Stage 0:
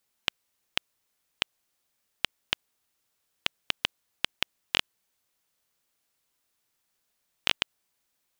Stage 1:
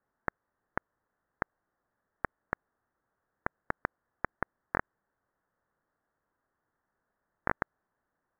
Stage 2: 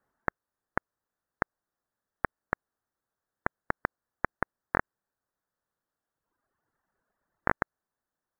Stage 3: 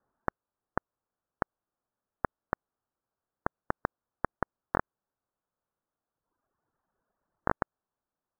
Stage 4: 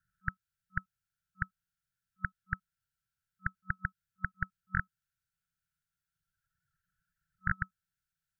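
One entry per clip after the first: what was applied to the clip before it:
steep low-pass 1800 Hz 72 dB/oct; gain +4.5 dB
reverb removal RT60 1.7 s; gain +4 dB
LPF 1400 Hz 24 dB/oct
FFT band-reject 190–1300 Hz; gain +3.5 dB

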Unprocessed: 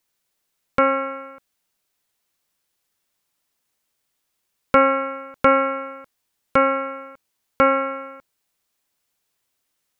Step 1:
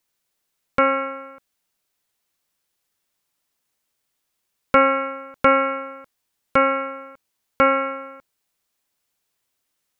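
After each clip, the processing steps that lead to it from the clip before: dynamic EQ 3000 Hz, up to +4 dB, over -32 dBFS, Q 0.85; gain -1 dB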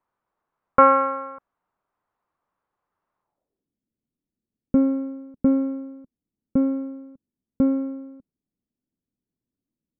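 low-pass sweep 1100 Hz -> 250 Hz, 3.2–3.73; gain +1 dB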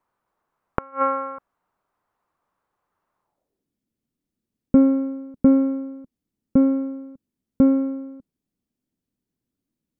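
flipped gate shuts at -8 dBFS, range -34 dB; gain +4 dB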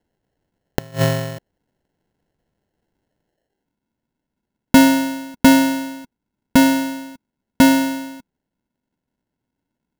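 sample-rate reducer 1200 Hz, jitter 0%; gain +4 dB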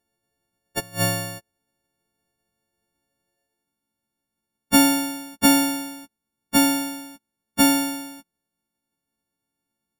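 frequency quantiser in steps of 4 st; gain -6.5 dB

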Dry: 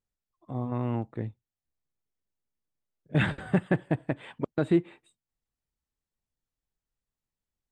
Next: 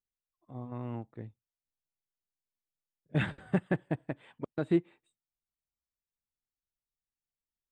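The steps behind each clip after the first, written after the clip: upward expander 1.5:1, over -35 dBFS; gain -3 dB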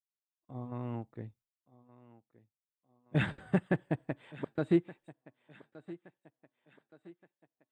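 expander -60 dBFS; thinning echo 1.171 s, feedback 47%, high-pass 170 Hz, level -18 dB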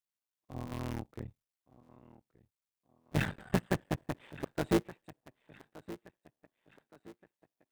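cycle switcher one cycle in 3, muted; in parallel at -12 dB: wrapped overs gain 28.5 dB

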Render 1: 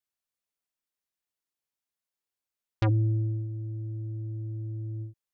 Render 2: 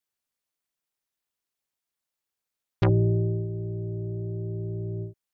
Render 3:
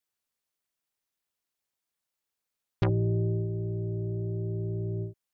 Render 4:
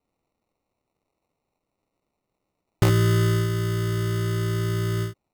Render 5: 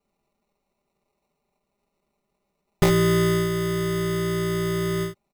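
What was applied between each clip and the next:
AM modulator 280 Hz, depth 85%; gain +7 dB
compressor, threshold -22 dBFS, peak gain reduction 5.5 dB
sample-and-hold 27×; gain +7 dB
comb 5 ms, depth 99%

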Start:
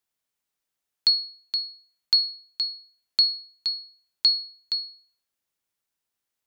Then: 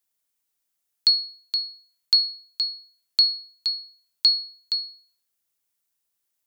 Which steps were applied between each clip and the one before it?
high shelf 5800 Hz +10.5 dB; gain -2 dB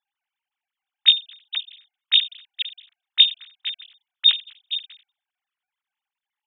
sine-wave speech; gain +2 dB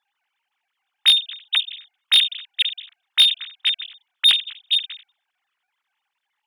overdrive pedal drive 19 dB, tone 3000 Hz, clips at -3 dBFS

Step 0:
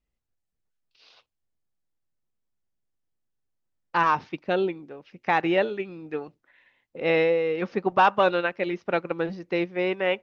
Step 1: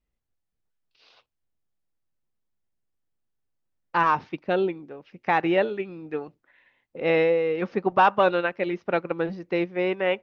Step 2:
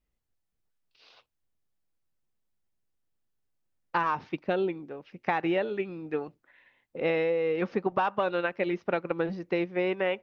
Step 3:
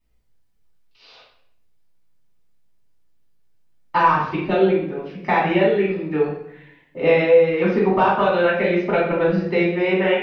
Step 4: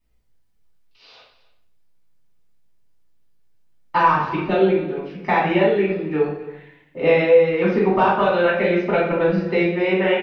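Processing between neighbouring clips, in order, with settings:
high shelf 3900 Hz -7 dB; gain +1 dB
compressor 12:1, threshold -23 dBFS, peak gain reduction 10 dB
reverb RT60 0.75 s, pre-delay 3 ms, DRR -8 dB
echo 0.269 s -17 dB

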